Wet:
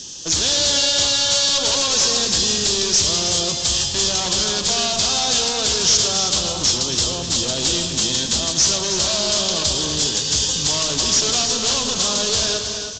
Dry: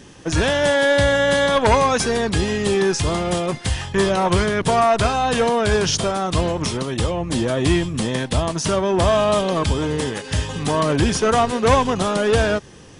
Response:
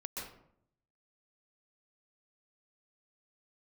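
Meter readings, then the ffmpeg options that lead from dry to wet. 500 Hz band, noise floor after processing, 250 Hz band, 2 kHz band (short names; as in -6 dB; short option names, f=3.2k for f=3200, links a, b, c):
-9.0 dB, -26 dBFS, -7.5 dB, -6.0 dB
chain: -filter_complex "[0:a]bandreject=f=113.5:t=h:w=4,bandreject=f=227:t=h:w=4,bandreject=f=340.5:t=h:w=4,bandreject=f=454:t=h:w=4,bandreject=f=567.5:t=h:w=4,bandreject=f=681:t=h:w=4,bandreject=f=794.5:t=h:w=4,bandreject=f=908:t=h:w=4,bandreject=f=1.0215k:t=h:w=4,bandreject=f=1.135k:t=h:w=4,bandreject=f=1.2485k:t=h:w=4,bandreject=f=1.362k:t=h:w=4,bandreject=f=1.4755k:t=h:w=4,bandreject=f=1.589k:t=h:w=4,bandreject=f=1.7025k:t=h:w=4,bandreject=f=1.816k:t=h:w=4,bandreject=f=1.9295k:t=h:w=4,bandreject=f=2.043k:t=h:w=4,bandreject=f=2.1565k:t=h:w=4,bandreject=f=2.27k:t=h:w=4,bandreject=f=2.3835k:t=h:w=4,bandreject=f=2.497k:t=h:w=4,bandreject=f=2.6105k:t=h:w=4,bandreject=f=2.724k:t=h:w=4,bandreject=f=2.8375k:t=h:w=4,bandreject=f=2.951k:t=h:w=4,bandreject=f=3.0645k:t=h:w=4,bandreject=f=3.178k:t=h:w=4,bandreject=f=3.2915k:t=h:w=4,bandreject=f=3.405k:t=h:w=4,bandreject=f=3.5185k:t=h:w=4,bandreject=f=3.632k:t=h:w=4,acompressor=threshold=-19dB:ratio=3,aeval=exprs='0.112*(abs(mod(val(0)/0.112+3,4)-2)-1)':c=same,aexciter=amount=7.9:drive=8.8:freq=3.2k,asoftclip=type=hard:threshold=-8dB,aecho=1:1:319:0.376,asplit=2[a][b];[1:a]atrim=start_sample=2205,adelay=112[c];[b][c]afir=irnorm=-1:irlink=0,volume=-6.5dB[d];[a][d]amix=inputs=2:normalize=0,aresample=16000,aresample=44100,volume=-4dB"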